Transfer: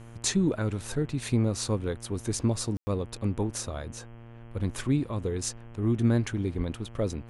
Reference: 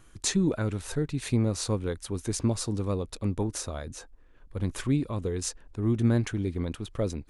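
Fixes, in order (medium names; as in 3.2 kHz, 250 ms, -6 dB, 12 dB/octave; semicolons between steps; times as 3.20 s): de-hum 116.1 Hz, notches 28; 6.57–6.69 s: high-pass 140 Hz 24 dB/octave; room tone fill 2.77–2.87 s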